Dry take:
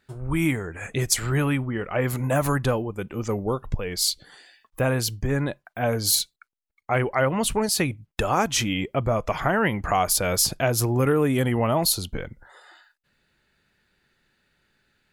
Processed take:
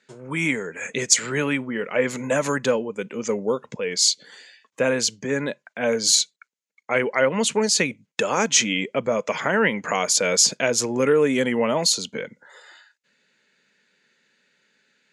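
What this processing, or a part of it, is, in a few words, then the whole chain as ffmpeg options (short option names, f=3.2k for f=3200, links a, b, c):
television speaker: -af "highpass=f=200:w=0.5412,highpass=f=200:w=1.3066,equalizer=f=330:t=q:w=4:g=-9,equalizer=f=480:t=q:w=4:g=4,equalizer=f=740:t=q:w=4:g=-10,equalizer=f=1.2k:t=q:w=4:g=-6,equalizer=f=2.2k:t=q:w=4:g=3,equalizer=f=6.7k:t=q:w=4:g=8,lowpass=f=7.7k:w=0.5412,lowpass=f=7.7k:w=1.3066,volume=4dB"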